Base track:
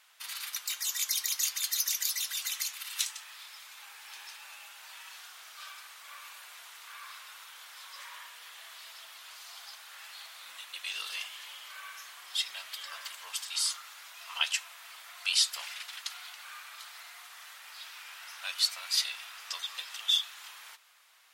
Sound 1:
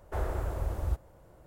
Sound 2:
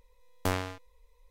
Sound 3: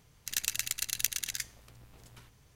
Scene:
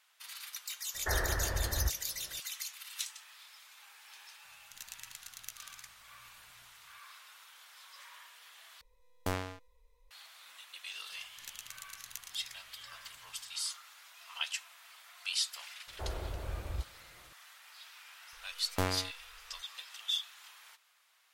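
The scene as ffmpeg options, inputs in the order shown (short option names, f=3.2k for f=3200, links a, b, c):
-filter_complex "[1:a]asplit=2[a][b];[3:a]asplit=2[c][d];[2:a]asplit=2[e][f];[0:a]volume=-7dB[g];[a]lowpass=f=1.8k:t=q:w=12[h];[c]equalizer=f=360:t=o:w=0.2:g=-12[i];[g]asplit=2[j][k];[j]atrim=end=8.814[l];[e]atrim=end=1.3,asetpts=PTS-STARTPTS,volume=-5dB[m];[k]atrim=start=10.106[n];[h]atrim=end=1.46,asetpts=PTS-STARTPTS,volume=-2.5dB,afade=t=in:d=0.004:c=hsin,afade=t=out:st=1.456:d=0.004:c=hsin,adelay=940[o];[i]atrim=end=2.55,asetpts=PTS-STARTPTS,volume=-16dB,afade=t=in:d=0.004:c=hsin,afade=t=out:st=2.546:d=0.004:c=hsin,adelay=4440[p];[d]atrim=end=2.55,asetpts=PTS-STARTPTS,volume=-15.5dB,afade=t=in:d=0.004:c=hsin,afade=t=out:st=2.546:d=0.004:c=hsin,adelay=11110[q];[b]atrim=end=1.46,asetpts=PTS-STARTPTS,volume=-7dB,afade=t=in:d=0.004:c=hsin,afade=t=out:st=1.456:d=0.004:c=hsin,adelay=15870[r];[f]atrim=end=1.3,asetpts=PTS-STARTPTS,volume=-2.5dB,afade=t=in:d=0.004:c=hsin,afade=t=out:st=1.296:d=0.004:c=hsin,adelay=18330[s];[l][m]acrossfade=d=0.004:c1=hsin:c2=hsin[t];[t][n]acrossfade=d=0.004:c1=hsin:c2=hsin[u];[u][o][p][q][r][s]amix=inputs=6:normalize=0"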